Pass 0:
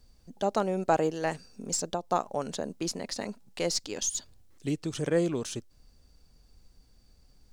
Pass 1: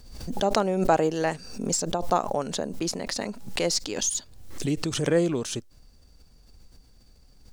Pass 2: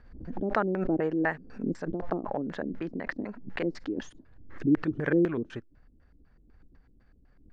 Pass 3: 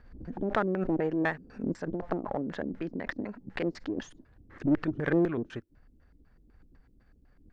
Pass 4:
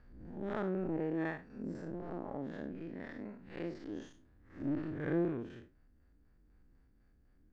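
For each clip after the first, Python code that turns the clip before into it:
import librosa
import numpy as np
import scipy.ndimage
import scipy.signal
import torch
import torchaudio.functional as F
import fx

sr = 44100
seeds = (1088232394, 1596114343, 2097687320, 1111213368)

y1 = fx.pre_swell(x, sr, db_per_s=62.0)
y1 = y1 * librosa.db_to_amplitude(3.5)
y2 = fx.filter_lfo_lowpass(y1, sr, shape='square', hz=4.0, low_hz=310.0, high_hz=1700.0, q=3.6)
y2 = y2 * librosa.db_to_amplitude(-5.5)
y3 = fx.diode_clip(y2, sr, knee_db=-21.0)
y4 = fx.spec_blur(y3, sr, span_ms=131.0)
y4 = y4 * librosa.db_to_amplitude(-5.0)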